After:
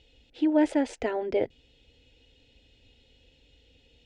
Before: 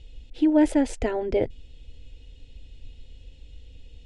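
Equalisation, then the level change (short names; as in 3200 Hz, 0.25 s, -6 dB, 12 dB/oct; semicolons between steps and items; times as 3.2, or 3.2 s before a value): HPF 380 Hz 6 dB/oct; air absorption 73 m; 0.0 dB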